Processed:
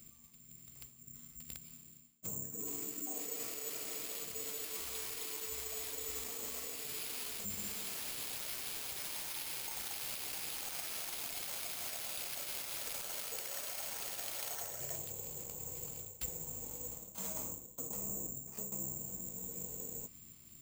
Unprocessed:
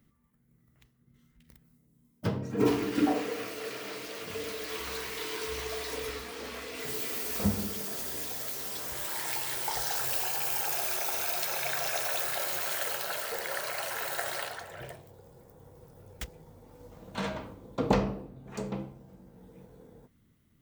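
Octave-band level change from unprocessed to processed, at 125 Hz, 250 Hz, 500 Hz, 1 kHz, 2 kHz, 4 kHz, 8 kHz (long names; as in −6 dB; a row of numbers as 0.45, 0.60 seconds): −14.0, −18.0, −15.0, −15.0, −12.0, −6.5, −1.5 decibels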